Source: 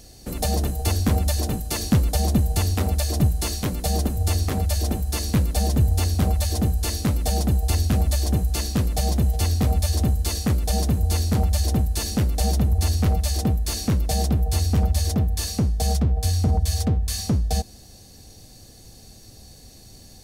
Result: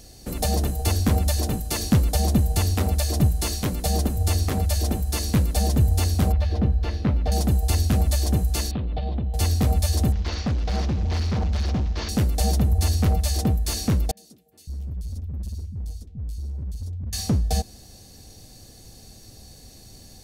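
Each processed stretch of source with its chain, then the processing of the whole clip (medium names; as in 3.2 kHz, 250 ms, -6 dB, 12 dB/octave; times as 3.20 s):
6.32–7.32 s: distance through air 300 m + doubling 15 ms -12 dB
8.71–9.34 s: steep low-pass 3.7 kHz 48 dB/octave + dynamic bell 1.8 kHz, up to -6 dB, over -50 dBFS, Q 1.2 + compression 10:1, threshold -22 dBFS
10.12–12.09 s: CVSD coder 32 kbps + hard clipper -20 dBFS
14.11–17.13 s: amplifier tone stack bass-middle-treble 10-0-1 + three bands offset in time mids, highs, lows 60/560 ms, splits 250/1900 Hz + overload inside the chain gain 27 dB
whole clip: none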